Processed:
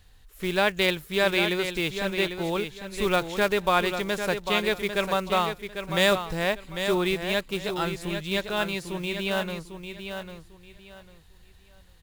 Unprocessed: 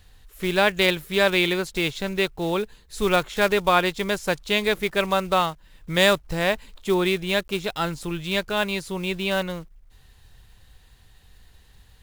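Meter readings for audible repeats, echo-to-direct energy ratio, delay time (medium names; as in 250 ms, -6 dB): 3, -7.5 dB, 798 ms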